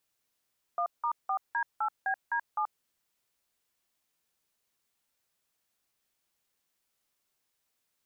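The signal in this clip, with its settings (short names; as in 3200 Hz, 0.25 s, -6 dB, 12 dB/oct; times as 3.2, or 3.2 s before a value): DTMF "1*4D8BD7", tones 81 ms, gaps 0.175 s, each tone -29.5 dBFS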